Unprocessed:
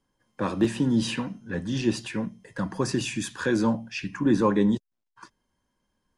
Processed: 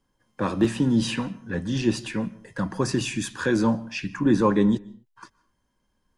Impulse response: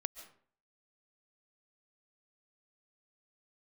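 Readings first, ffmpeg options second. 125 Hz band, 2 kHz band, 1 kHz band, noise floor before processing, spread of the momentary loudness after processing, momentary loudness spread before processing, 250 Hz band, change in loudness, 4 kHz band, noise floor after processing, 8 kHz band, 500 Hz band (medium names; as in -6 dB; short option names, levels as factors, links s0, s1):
+2.5 dB, +1.5 dB, +2.0 dB, -81 dBFS, 11 LU, 11 LU, +2.0 dB, +2.0 dB, +1.5 dB, -73 dBFS, +1.5 dB, +1.5 dB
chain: -filter_complex "[0:a]asplit=2[s0][s1];[s1]equalizer=f=1300:t=o:w=0.77:g=3.5[s2];[1:a]atrim=start_sample=2205,afade=t=out:st=0.33:d=0.01,atrim=end_sample=14994,lowshelf=f=120:g=11.5[s3];[s2][s3]afir=irnorm=-1:irlink=0,volume=0.376[s4];[s0][s4]amix=inputs=2:normalize=0,volume=0.891"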